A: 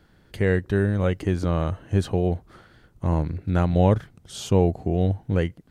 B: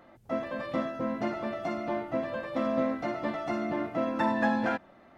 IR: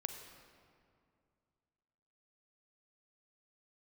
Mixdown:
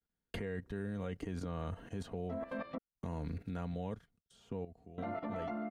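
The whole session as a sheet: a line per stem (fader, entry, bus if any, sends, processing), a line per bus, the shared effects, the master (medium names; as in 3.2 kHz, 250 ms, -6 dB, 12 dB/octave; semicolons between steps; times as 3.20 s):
3.77 s -8.5 dB -> 4.06 s -19.5 dB, 0.00 s, no send, gate -43 dBFS, range -46 dB; three bands compressed up and down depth 70%
-3.0 dB, 2.00 s, muted 2.78–4.98 s, no send, low-pass that closes with the level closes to 1 kHz, closed at -26 dBFS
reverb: none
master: comb 4.3 ms, depth 46%; level held to a coarse grid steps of 13 dB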